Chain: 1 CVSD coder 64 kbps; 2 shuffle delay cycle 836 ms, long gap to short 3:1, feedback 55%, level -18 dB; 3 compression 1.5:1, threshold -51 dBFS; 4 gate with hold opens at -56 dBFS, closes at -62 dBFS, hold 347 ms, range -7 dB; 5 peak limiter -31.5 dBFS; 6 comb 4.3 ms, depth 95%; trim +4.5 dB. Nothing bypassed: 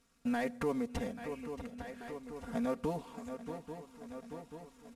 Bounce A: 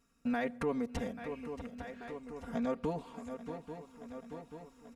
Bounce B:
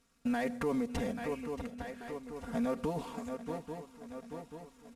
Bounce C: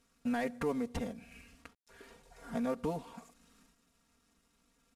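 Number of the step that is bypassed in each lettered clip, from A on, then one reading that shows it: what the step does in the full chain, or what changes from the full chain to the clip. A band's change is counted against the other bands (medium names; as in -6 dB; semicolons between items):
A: 1, 8 kHz band -3.0 dB; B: 3, mean gain reduction 4.5 dB; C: 2, momentary loudness spread change +6 LU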